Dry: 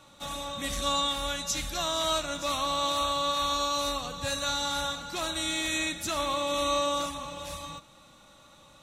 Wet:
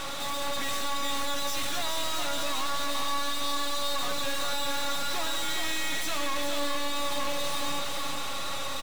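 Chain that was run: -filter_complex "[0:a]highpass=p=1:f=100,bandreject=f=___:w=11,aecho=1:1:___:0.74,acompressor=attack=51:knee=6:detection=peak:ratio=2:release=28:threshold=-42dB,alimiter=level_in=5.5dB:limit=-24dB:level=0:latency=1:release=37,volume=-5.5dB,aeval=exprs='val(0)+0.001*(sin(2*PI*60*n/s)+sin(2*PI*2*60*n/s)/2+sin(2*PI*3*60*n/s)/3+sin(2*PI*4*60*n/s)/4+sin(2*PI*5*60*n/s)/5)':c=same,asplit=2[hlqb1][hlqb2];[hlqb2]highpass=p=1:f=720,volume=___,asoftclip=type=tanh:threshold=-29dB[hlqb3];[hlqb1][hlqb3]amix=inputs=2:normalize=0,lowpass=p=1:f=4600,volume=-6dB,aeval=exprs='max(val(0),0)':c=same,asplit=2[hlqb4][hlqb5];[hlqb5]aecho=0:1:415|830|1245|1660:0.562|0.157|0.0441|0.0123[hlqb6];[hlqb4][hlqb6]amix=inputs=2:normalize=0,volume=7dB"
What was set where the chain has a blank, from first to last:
6700, 7.3, 32dB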